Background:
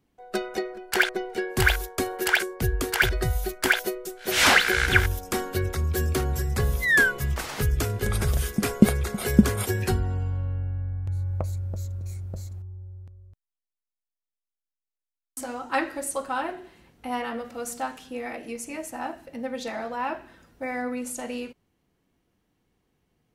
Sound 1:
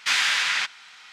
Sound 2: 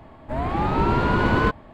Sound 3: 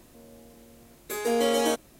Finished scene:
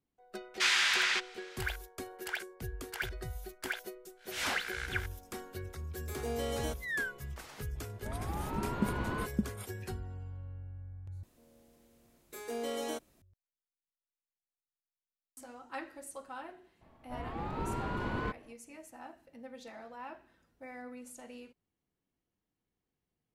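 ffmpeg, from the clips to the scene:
-filter_complex "[3:a]asplit=2[a][b];[2:a]asplit=2[c][d];[0:a]volume=-16dB[e];[a]agate=range=-33dB:threshold=-46dB:ratio=3:release=100:detection=peak[f];[e]asplit=2[g][h];[g]atrim=end=11.234[i];[b]atrim=end=1.99,asetpts=PTS-STARTPTS,volume=-13dB[j];[h]atrim=start=13.216[k];[1:a]atrim=end=1.12,asetpts=PTS-STARTPTS,volume=-6dB,afade=t=in:d=0.004:c=hsin,afade=t=out:st=1.116:d=0.004:c=hsin,adelay=540[l];[f]atrim=end=1.99,asetpts=PTS-STARTPTS,volume=-12.5dB,afade=t=in:d=0.004:c=hsin,afade=t=out:st=1.986:d=0.004:c=hsin,adelay=4980[m];[c]atrim=end=1.73,asetpts=PTS-STARTPTS,volume=-16.5dB,afade=t=in:d=0.004:c=hsin,afade=t=out:st=1.726:d=0.004:c=hsin,adelay=7750[n];[d]atrim=end=1.73,asetpts=PTS-STARTPTS,volume=-16dB,afade=t=in:d=0.004:c=hsin,afade=t=out:st=1.726:d=0.004:c=hsin,adelay=16810[o];[i][j]acrossfade=d=0.004:c1=hsin:c2=hsin[p];[p][k]acrossfade=d=0.004:c1=hsin:c2=hsin[q];[q][l][m][n][o]amix=inputs=5:normalize=0"

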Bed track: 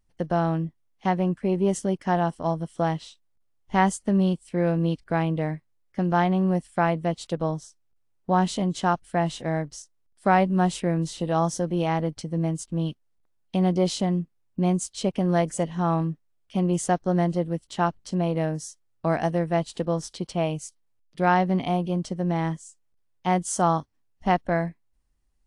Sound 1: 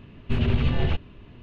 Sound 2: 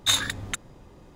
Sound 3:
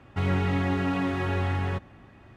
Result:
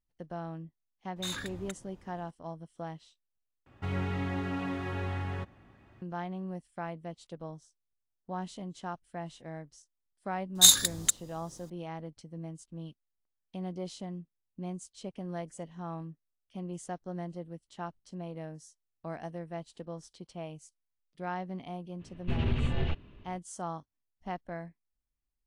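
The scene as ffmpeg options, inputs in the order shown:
-filter_complex "[2:a]asplit=2[a][b];[0:a]volume=-16dB[c];[a]alimiter=limit=-18.5dB:level=0:latency=1:release=23[d];[b]aexciter=amount=6.6:drive=3.9:freq=3.7k[e];[c]asplit=2[f][g];[f]atrim=end=3.664[h];[3:a]atrim=end=2.36,asetpts=PTS-STARTPTS,volume=-7.5dB[i];[g]atrim=start=6.016[j];[d]atrim=end=1.15,asetpts=PTS-STARTPTS,volume=-9dB,afade=t=in:d=0.004:c=hsin,afade=t=out:st=1.146:d=0.004:c=hsin,adelay=1160[k];[e]atrim=end=1.15,asetpts=PTS-STARTPTS,volume=-8dB,afade=t=in:d=0.004:c=hsin,afade=t=out:st=1.146:d=0.004:c=hsin,adelay=10550[l];[1:a]atrim=end=1.42,asetpts=PTS-STARTPTS,volume=-7dB,afade=t=in:d=0.05,afade=t=out:st=1.37:d=0.05,adelay=21980[m];[h][i]acrossfade=d=0.004:c1=hsin:c2=hsin[n];[n][j]acrossfade=d=0.004:c1=hsin:c2=hsin[o];[o][k][l][m]amix=inputs=4:normalize=0"

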